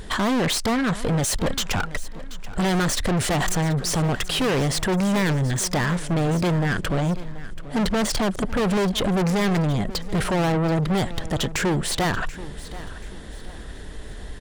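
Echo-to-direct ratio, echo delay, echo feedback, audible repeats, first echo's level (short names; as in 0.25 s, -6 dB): -16.0 dB, 0.732 s, 36%, 3, -16.5 dB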